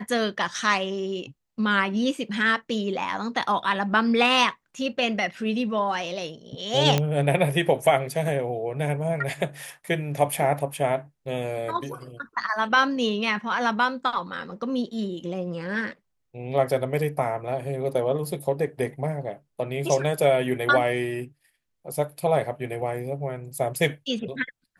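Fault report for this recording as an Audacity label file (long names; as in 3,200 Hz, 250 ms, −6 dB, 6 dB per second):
6.980000	6.980000	click −8 dBFS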